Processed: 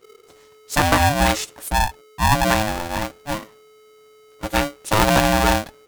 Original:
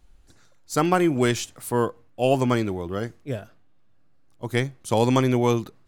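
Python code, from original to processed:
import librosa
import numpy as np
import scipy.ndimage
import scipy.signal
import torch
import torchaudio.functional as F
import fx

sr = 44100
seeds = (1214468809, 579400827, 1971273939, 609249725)

y = fx.envelope_sharpen(x, sr, power=3.0, at=(1.68, 2.48))
y = y * np.sign(np.sin(2.0 * np.pi * 430.0 * np.arange(len(y)) / sr))
y = y * 10.0 ** (3.5 / 20.0)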